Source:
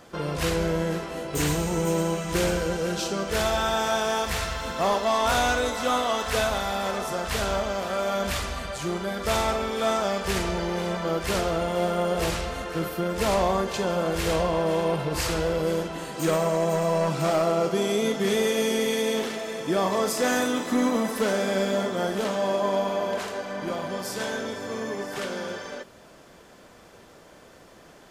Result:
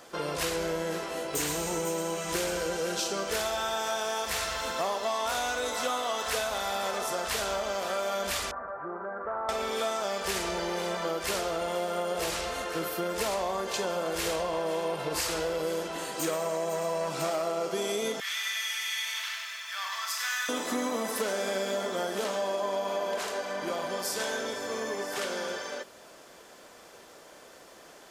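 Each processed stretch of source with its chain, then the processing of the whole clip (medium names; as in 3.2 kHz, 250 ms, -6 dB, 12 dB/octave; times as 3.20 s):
8.51–9.49 s: steep low-pass 1.5 kHz 48 dB/octave + tilt EQ +3 dB/octave + compression 2:1, threshold -32 dBFS
18.20–20.49 s: inverse Chebyshev high-pass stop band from 300 Hz, stop band 70 dB + peaking EQ 9.3 kHz -11.5 dB 1.1 oct + bit-crushed delay 98 ms, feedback 55%, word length 10-bit, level -5 dB
whole clip: tone controls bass -12 dB, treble +4 dB; compression, threshold -27 dBFS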